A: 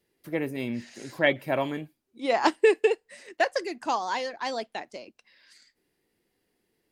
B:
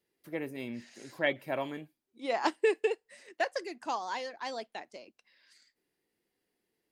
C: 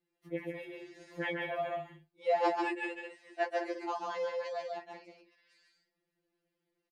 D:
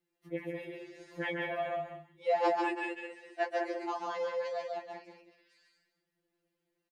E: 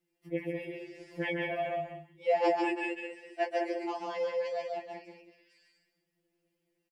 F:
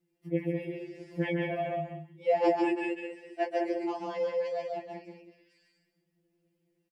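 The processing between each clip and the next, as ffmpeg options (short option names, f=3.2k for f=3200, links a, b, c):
-af "lowshelf=f=130:g=-7.5,volume=-6.5dB"
-filter_complex "[0:a]lowpass=f=2.5k:p=1,asplit=2[a][b];[b]aecho=0:1:139.9|198.3:0.708|0.316[c];[a][c]amix=inputs=2:normalize=0,afftfilt=real='re*2.83*eq(mod(b,8),0)':imag='im*2.83*eq(mod(b,8),0)':win_size=2048:overlap=0.75"
-filter_complex "[0:a]asplit=2[a][b];[b]adelay=192.4,volume=-10dB,highshelf=f=4k:g=-4.33[c];[a][c]amix=inputs=2:normalize=0"
-af "aecho=1:1:6.2:0.64"
-af "equalizer=f=150:t=o:w=3:g=11,volume=-2.5dB"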